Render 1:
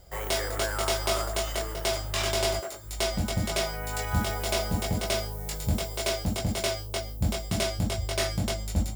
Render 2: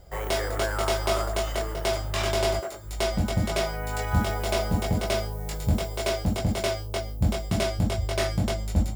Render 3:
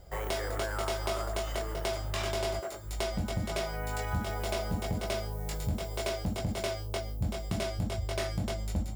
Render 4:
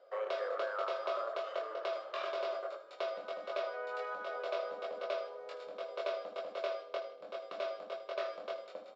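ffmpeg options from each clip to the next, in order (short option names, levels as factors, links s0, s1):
-af "highshelf=f=2600:g=-7.5,volume=1.5"
-af "acompressor=threshold=0.0355:ratio=2.5,volume=0.794"
-af "highpass=f=480:w=0.5412,highpass=f=480:w=1.3066,equalizer=f=540:t=q:w=4:g=10,equalizer=f=850:t=q:w=4:g=-10,equalizer=f=1200:t=q:w=4:g=7,equalizer=f=2000:t=q:w=4:g=-8,equalizer=f=3100:t=q:w=4:g=-5,lowpass=f=3700:w=0.5412,lowpass=f=3700:w=1.3066,aecho=1:1:79|158|237|316:0.224|0.094|0.0395|0.0166,volume=0.708"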